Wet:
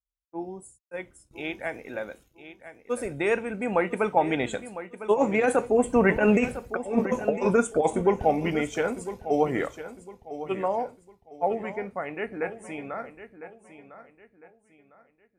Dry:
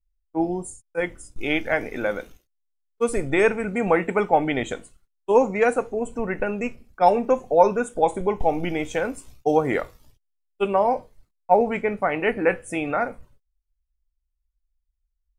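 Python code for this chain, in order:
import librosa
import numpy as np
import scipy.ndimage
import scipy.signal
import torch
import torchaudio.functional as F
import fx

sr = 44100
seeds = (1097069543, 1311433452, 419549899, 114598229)

y = fx.doppler_pass(x, sr, speed_mps=13, closest_m=5.6, pass_at_s=6.59)
y = scipy.signal.sosfilt(scipy.signal.butter(2, 57.0, 'highpass', fs=sr, output='sos'), y)
y = fx.over_compress(y, sr, threshold_db=-29.0, ratio=-0.5)
y = fx.echo_feedback(y, sr, ms=1004, feedback_pct=33, wet_db=-13.0)
y = F.gain(torch.from_numpy(y), 8.5).numpy()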